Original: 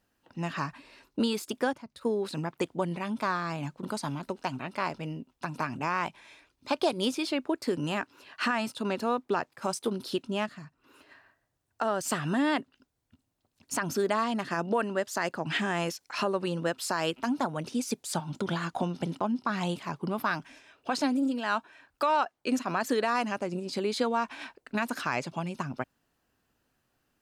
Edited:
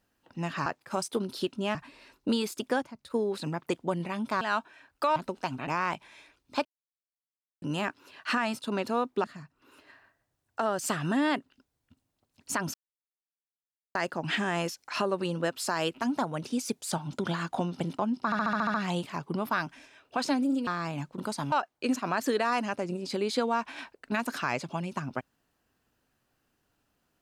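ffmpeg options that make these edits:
ffmpeg -i in.wav -filter_complex "[0:a]asplit=20[link_01][link_02][link_03][link_04][link_05][link_06][link_07][link_08][link_09][link_10][link_11][link_12][link_13][link_14][link_15][link_16][link_17][link_18][link_19][link_20];[link_01]atrim=end=0.662[link_21];[link_02]atrim=start=9.368:end=10.462[link_22];[link_03]atrim=start=0.658:end=3.322[link_23];[link_04]atrim=start=21.398:end=22.152[link_24];[link_05]atrim=start=4.168:end=4.682[link_25];[link_06]atrim=start=5.798:end=6.78,asetpts=PTS-STARTPTS,afade=type=out:start_time=0.978:duration=0.004:curve=hsin[link_26];[link_07]atrim=start=6.78:end=7.75,asetpts=PTS-STARTPTS,volume=0[link_27];[link_08]atrim=start=7.75:end=9.372,asetpts=PTS-STARTPTS,afade=type=in:duration=0.004:curve=hsin[link_28];[link_09]atrim=start=10.458:end=13.96,asetpts=PTS-STARTPTS,afade=type=out:start_time=3.498:duration=0.004:curve=hsin[link_29];[link_10]atrim=start=13.96:end=15.17,asetpts=PTS-STARTPTS,volume=0[link_30];[link_11]atrim=start=15.17:end=19.542,asetpts=PTS-STARTPTS,afade=type=in:duration=0.004:curve=hsin[link_31];[link_12]atrim=start=19.468:end=19.542[link_32];[link_13]atrim=start=19.468:end=19.542[link_33];[link_14]atrim=start=19.468:end=19.542[link_34];[link_15]atrim=start=19.468:end=19.542[link_35];[link_16]atrim=start=19.468:end=19.542[link_36];[link_17]atrim=start=19.468:end=19.542[link_37];[link_18]atrim=start=19.468:end=21.402[link_38];[link_19]atrim=start=3.318:end=4.172[link_39];[link_20]atrim=start=22.148[link_40];[link_21][link_22]acrossfade=duration=0.004:curve1=hsin:curve2=hsin[link_41];[link_41][link_23]acrossfade=duration=0.004:curve1=hsin:curve2=hsin[link_42];[link_42][link_24]acrossfade=duration=0.004:curve1=hsin:curve2=hsin[link_43];[link_43][link_25]acrossfade=duration=0.004:curve1=hsin:curve2=hsin[link_44];[link_26][link_27][link_28]concat=n=3:v=0:a=1[link_45];[link_44][link_45]acrossfade=duration=0.004:curve1=hsin:curve2=hsin[link_46];[link_29][link_30][link_31]concat=n=3:v=0:a=1[link_47];[link_46][link_47]acrossfade=duration=0.004:curve1=hsin:curve2=hsin[link_48];[link_48][link_32]acrossfade=duration=0.004:curve1=hsin:curve2=hsin[link_49];[link_49][link_33]acrossfade=duration=0.004:curve1=hsin:curve2=hsin[link_50];[link_50][link_34]acrossfade=duration=0.004:curve1=hsin:curve2=hsin[link_51];[link_51][link_35]acrossfade=duration=0.004:curve1=hsin:curve2=hsin[link_52];[link_52][link_36]acrossfade=duration=0.004:curve1=hsin:curve2=hsin[link_53];[link_53][link_37]acrossfade=duration=0.004:curve1=hsin:curve2=hsin[link_54];[link_54][link_38]acrossfade=duration=0.004:curve1=hsin:curve2=hsin[link_55];[link_55][link_39]acrossfade=duration=0.004:curve1=hsin:curve2=hsin[link_56];[link_56][link_40]acrossfade=duration=0.004:curve1=hsin:curve2=hsin" out.wav

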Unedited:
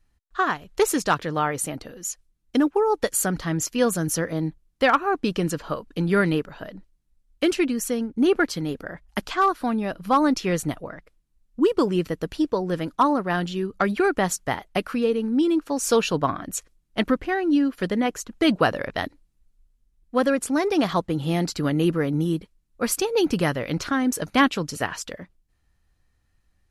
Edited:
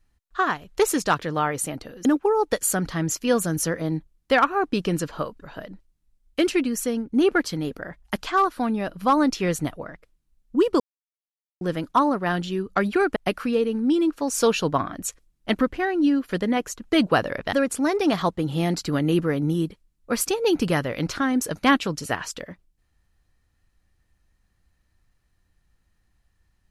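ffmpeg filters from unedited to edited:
ffmpeg -i in.wav -filter_complex "[0:a]asplit=7[link_01][link_02][link_03][link_04][link_05][link_06][link_07];[link_01]atrim=end=2.052[link_08];[link_02]atrim=start=2.558:end=5.932[link_09];[link_03]atrim=start=6.458:end=11.84,asetpts=PTS-STARTPTS,afade=type=out:start_time=5.378:duration=0.004:curve=hsin[link_10];[link_04]atrim=start=11.84:end=12.65,asetpts=PTS-STARTPTS,volume=0[link_11];[link_05]atrim=start=12.65:end=14.202,asetpts=PTS-STARTPTS,afade=type=in:duration=0.004:curve=hsin[link_12];[link_06]atrim=start=14.648:end=19.022[link_13];[link_07]atrim=start=20.238[link_14];[link_08][link_09]acrossfade=duration=0.004:curve1=hsin:curve2=hsin[link_15];[link_10][link_11][link_12]concat=n=3:v=0:a=1[link_16];[link_15][link_16]acrossfade=duration=0.004:curve1=hsin:curve2=hsin[link_17];[link_17][link_13]acrossfade=duration=0.004:curve1=hsin:curve2=hsin[link_18];[link_18][link_14]acrossfade=duration=0.004:curve1=hsin:curve2=hsin" out.wav

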